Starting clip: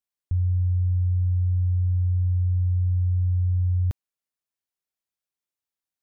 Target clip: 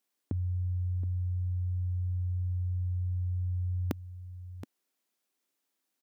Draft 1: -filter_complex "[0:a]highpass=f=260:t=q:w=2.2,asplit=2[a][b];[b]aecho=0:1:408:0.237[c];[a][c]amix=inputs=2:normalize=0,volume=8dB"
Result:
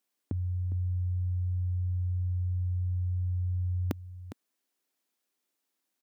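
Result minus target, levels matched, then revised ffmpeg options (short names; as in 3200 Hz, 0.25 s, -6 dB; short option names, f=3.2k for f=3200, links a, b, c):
echo 0.315 s early
-filter_complex "[0:a]highpass=f=260:t=q:w=2.2,asplit=2[a][b];[b]aecho=0:1:723:0.237[c];[a][c]amix=inputs=2:normalize=0,volume=8dB"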